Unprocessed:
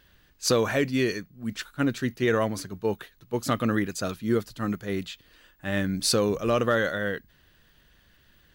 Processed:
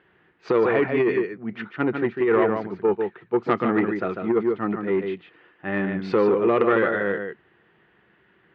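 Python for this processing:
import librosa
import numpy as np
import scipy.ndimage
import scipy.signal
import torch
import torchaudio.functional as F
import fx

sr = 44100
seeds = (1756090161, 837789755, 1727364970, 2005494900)

p1 = fx.cabinet(x, sr, low_hz=250.0, low_slope=12, high_hz=2000.0, hz=(260.0, 370.0, 580.0, 1100.0, 1600.0), db=(-9, 5, -9, -4, -7))
p2 = p1 + fx.echo_single(p1, sr, ms=147, db=-6.5, dry=0)
p3 = fx.over_compress(p2, sr, threshold_db=-25.0, ratio=-1.0)
p4 = fx.transformer_sat(p3, sr, knee_hz=690.0)
y = p4 * librosa.db_to_amplitude(8.5)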